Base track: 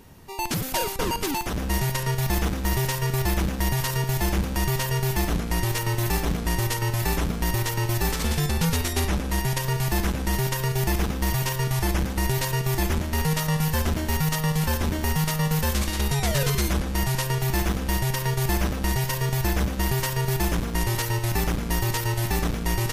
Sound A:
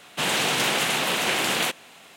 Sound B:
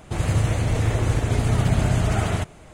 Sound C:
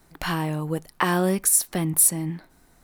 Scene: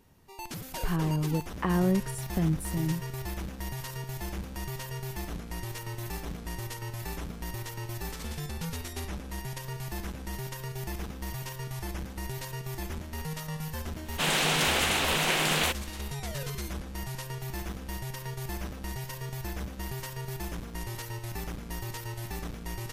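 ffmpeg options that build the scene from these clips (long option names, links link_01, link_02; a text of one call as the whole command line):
ffmpeg -i bed.wav -i cue0.wav -i cue1.wav -i cue2.wav -filter_complex "[0:a]volume=-12.5dB[link_01];[3:a]aemphasis=mode=reproduction:type=riaa,atrim=end=2.83,asetpts=PTS-STARTPTS,volume=-9.5dB,afade=type=in:duration=0.004:curve=hsin,afade=type=out:start_time=2.826:duration=0.004:curve=hsin,adelay=620[link_02];[1:a]atrim=end=2.16,asetpts=PTS-STARTPTS,volume=-3dB,afade=type=in:duration=0.1,afade=type=out:start_time=2.06:duration=0.1,adelay=14010[link_03];[link_01][link_02][link_03]amix=inputs=3:normalize=0" out.wav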